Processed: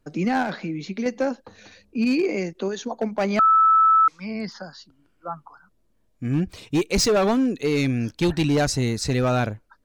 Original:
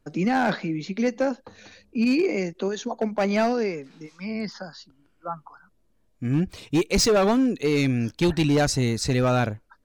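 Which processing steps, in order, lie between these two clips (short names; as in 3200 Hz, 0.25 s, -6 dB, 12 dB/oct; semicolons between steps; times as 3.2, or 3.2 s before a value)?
0.42–1.06 compressor, threshold -24 dBFS, peak gain reduction 6 dB; 3.39–4.08 bleep 1310 Hz -12.5 dBFS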